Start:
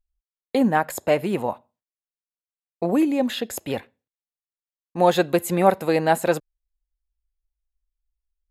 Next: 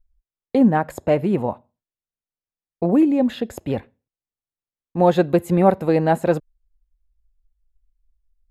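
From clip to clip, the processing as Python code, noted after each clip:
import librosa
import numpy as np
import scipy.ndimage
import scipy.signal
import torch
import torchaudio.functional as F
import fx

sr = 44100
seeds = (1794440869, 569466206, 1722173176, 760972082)

y = fx.tilt_eq(x, sr, slope=-3.0)
y = F.gain(torch.from_numpy(y), -1.0).numpy()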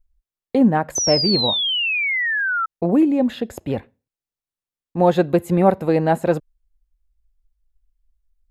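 y = fx.spec_paint(x, sr, seeds[0], shape='fall', start_s=0.95, length_s=1.71, low_hz=1300.0, high_hz=6200.0, level_db=-21.0)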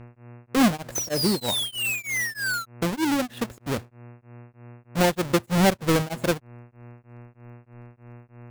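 y = fx.halfwave_hold(x, sr)
y = fx.dmg_buzz(y, sr, base_hz=120.0, harmonics=23, level_db=-36.0, tilt_db=-7, odd_only=False)
y = y * np.abs(np.cos(np.pi * 3.2 * np.arange(len(y)) / sr))
y = F.gain(torch.from_numpy(y), -7.0).numpy()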